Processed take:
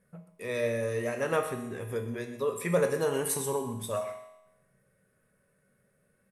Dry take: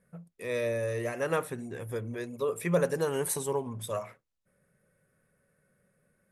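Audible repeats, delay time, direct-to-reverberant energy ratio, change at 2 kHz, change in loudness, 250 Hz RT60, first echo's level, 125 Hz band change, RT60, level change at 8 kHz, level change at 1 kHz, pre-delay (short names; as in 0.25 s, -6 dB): 1, 0.127 s, 4.5 dB, +1.0 dB, +1.0 dB, 0.90 s, -15.0 dB, -0.5 dB, 0.90 s, +1.5 dB, +1.5 dB, 5 ms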